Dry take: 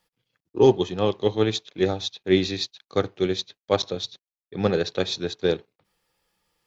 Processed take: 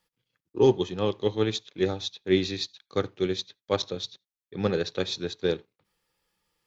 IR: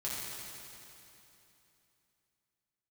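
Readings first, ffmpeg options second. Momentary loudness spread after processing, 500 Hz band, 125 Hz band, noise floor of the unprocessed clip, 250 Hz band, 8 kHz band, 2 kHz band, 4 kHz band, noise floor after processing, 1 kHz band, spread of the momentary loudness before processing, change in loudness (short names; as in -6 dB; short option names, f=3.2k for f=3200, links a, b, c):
11 LU, -3.5 dB, -3.0 dB, under -85 dBFS, -3.5 dB, n/a, -3.5 dB, -3.5 dB, under -85 dBFS, -5.0 dB, 11 LU, -3.5 dB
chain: -filter_complex "[0:a]equalizer=f=690:t=o:w=0.38:g=-5.5,asplit=2[a][b];[1:a]atrim=start_sample=2205,atrim=end_sample=3969[c];[b][c]afir=irnorm=-1:irlink=0,volume=-26.5dB[d];[a][d]amix=inputs=2:normalize=0,volume=-3.5dB"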